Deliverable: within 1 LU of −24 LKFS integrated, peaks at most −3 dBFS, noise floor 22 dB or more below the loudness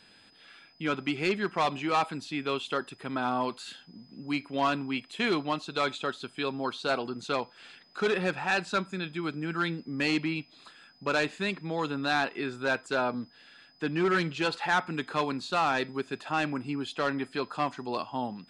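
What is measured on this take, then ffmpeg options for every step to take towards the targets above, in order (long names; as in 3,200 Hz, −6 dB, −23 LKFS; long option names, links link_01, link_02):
interfering tone 5,000 Hz; level of the tone −60 dBFS; integrated loudness −30.5 LKFS; sample peak −17.5 dBFS; target loudness −24.0 LKFS
→ -af "bandreject=frequency=5000:width=30"
-af "volume=6.5dB"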